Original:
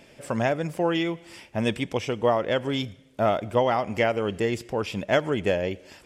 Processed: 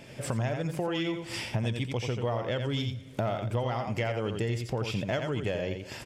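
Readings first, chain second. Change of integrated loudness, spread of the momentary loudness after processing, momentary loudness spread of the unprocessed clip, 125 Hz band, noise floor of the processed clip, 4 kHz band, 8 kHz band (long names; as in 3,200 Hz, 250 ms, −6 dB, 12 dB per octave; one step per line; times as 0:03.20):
−5.5 dB, 3 LU, 7 LU, +2.5 dB, −46 dBFS, −3.5 dB, can't be measured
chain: camcorder AGC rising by 17 dB per second
parametric band 120 Hz +11.5 dB 0.55 octaves
on a send: single-tap delay 86 ms −7.5 dB
on the sum: dynamic equaliser 4,400 Hz, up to +4 dB, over −44 dBFS, Q 1
in parallel at −7.5 dB: soft clipping −17.5 dBFS, distortion −13 dB
on the sum: downward compressor 2.5 to 1, threshold −31 dBFS, peak gain reduction 12.5 dB
level −1.5 dB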